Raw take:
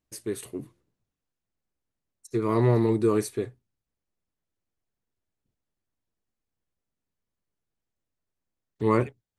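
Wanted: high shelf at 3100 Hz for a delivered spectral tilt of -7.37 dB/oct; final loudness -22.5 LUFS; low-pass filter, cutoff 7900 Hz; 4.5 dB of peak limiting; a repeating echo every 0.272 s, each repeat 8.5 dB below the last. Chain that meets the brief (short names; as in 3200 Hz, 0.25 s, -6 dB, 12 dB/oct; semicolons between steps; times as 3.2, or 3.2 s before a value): LPF 7900 Hz; high shelf 3100 Hz -8.5 dB; limiter -15 dBFS; feedback echo 0.272 s, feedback 38%, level -8.5 dB; gain +5 dB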